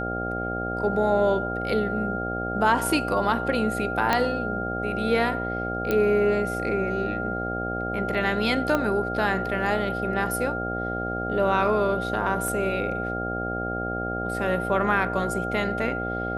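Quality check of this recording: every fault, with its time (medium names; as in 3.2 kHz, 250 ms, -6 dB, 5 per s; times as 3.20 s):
buzz 60 Hz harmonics 13 -31 dBFS
whine 1.4 kHz -30 dBFS
4.13 s: pop -7 dBFS
5.91 s: pop -11 dBFS
8.75 s: pop -11 dBFS
12.48 s: dropout 2 ms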